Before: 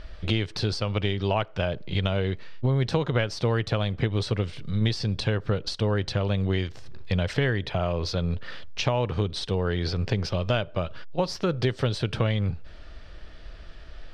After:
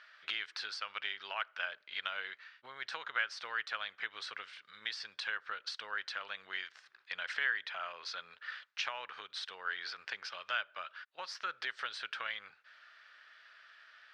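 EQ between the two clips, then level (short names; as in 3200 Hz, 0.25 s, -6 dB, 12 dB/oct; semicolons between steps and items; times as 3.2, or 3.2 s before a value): resonant high-pass 1500 Hz, resonance Q 2.7; air absorption 51 m; -8.0 dB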